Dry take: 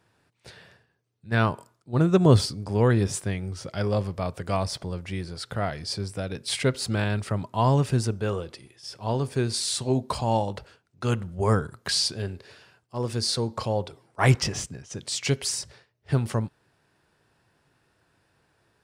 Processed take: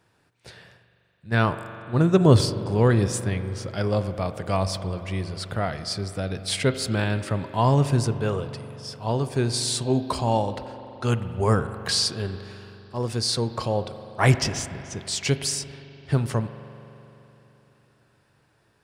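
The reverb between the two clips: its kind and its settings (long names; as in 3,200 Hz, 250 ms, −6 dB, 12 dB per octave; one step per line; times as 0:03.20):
spring reverb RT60 3.4 s, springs 42 ms, chirp 80 ms, DRR 10.5 dB
level +1.5 dB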